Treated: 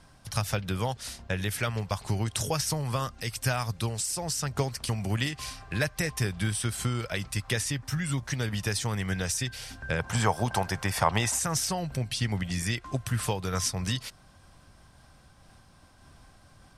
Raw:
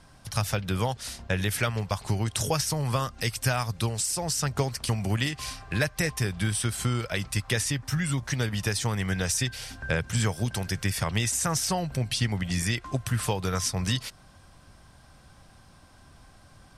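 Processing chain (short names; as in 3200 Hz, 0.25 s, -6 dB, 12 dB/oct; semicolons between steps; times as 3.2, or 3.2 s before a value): 9.99–11.39 bell 860 Hz +15 dB 1.4 oct; noise-modulated level, depth 50%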